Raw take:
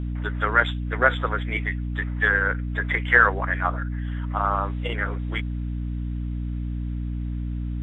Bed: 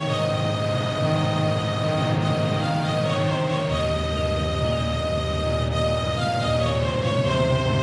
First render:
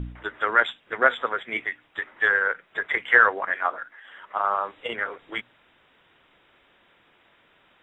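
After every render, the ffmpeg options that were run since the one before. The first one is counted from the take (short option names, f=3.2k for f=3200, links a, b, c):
-af "bandreject=f=60:t=h:w=4,bandreject=f=120:t=h:w=4,bandreject=f=180:t=h:w=4,bandreject=f=240:t=h:w=4,bandreject=f=300:t=h:w=4"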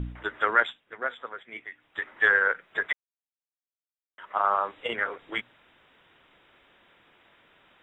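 -filter_complex "[0:a]asplit=5[a][b][c][d][e];[a]atrim=end=0.87,asetpts=PTS-STARTPTS,afade=t=out:st=0.45:d=0.42:silence=0.251189[f];[b]atrim=start=0.87:end=1.69,asetpts=PTS-STARTPTS,volume=-12dB[g];[c]atrim=start=1.69:end=2.93,asetpts=PTS-STARTPTS,afade=t=in:d=0.42:silence=0.251189,afade=t=out:st=1.236:d=0.004:c=hsin[h];[d]atrim=start=2.93:end=4.18,asetpts=PTS-STARTPTS,volume=0[i];[e]atrim=start=4.18,asetpts=PTS-STARTPTS,afade=t=in:d=0.004:c=hsin[j];[f][g][h][i][j]concat=n=5:v=0:a=1"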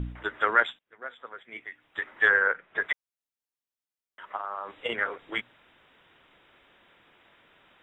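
-filter_complex "[0:a]asettb=1/sr,asplit=3[a][b][c];[a]atrim=end=2.304[d];[b]atrim=start=2.3:end=2.8,asetpts=PTS-STARTPTS,afade=t=in:d=0.004:c=qsin,afade=t=out:st=0.496:d=0.004:c=qsin,lowpass=2.7k[e];[c]atrim=start=2.796[f];[d][e]acrossfade=d=0.004:c1=hsin:c2=qsin[g];[g][f]acrossfade=d=0.004:c1=qsin:c2=hsin,asplit=3[h][i][j];[h]afade=t=out:st=4.35:d=0.02[k];[i]acompressor=threshold=-30dB:ratio=6:attack=3.2:release=140:knee=1:detection=peak,afade=t=in:st=4.35:d=0.02,afade=t=out:st=4.75:d=0.02[l];[j]afade=t=in:st=4.75:d=0.02[m];[k][l][m]amix=inputs=3:normalize=0,asplit=2[n][o];[n]atrim=end=0.79,asetpts=PTS-STARTPTS,afade=t=out:st=0.786:d=0.004:c=hsin:silence=0.0891251[p];[o]atrim=start=0.79,asetpts=PTS-STARTPTS,afade=t=in:d=0.87:silence=0.0891251[q];[p][q]concat=n=2:v=0:a=1"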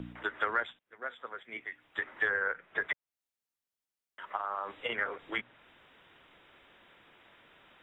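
-filter_complex "[0:a]acrossover=split=150|810|3100[a][b][c][d];[a]acompressor=threshold=-57dB:ratio=4[e];[b]acompressor=threshold=-39dB:ratio=4[f];[c]acompressor=threshold=-30dB:ratio=4[g];[d]acompressor=threshold=-54dB:ratio=4[h];[e][f][g][h]amix=inputs=4:normalize=0"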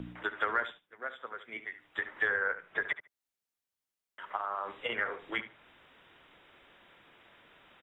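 -filter_complex "[0:a]asplit=2[a][b];[b]adelay=73,lowpass=f=3.3k:p=1,volume=-12.5dB,asplit=2[c][d];[d]adelay=73,lowpass=f=3.3k:p=1,volume=0.17[e];[a][c][e]amix=inputs=3:normalize=0"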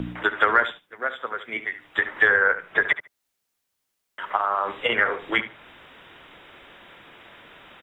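-af "volume=12dB"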